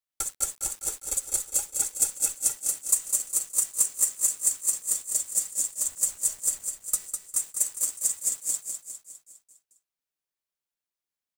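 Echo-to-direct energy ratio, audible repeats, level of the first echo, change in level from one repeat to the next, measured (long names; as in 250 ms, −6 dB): −5.0 dB, 6, −6.5 dB, −5.5 dB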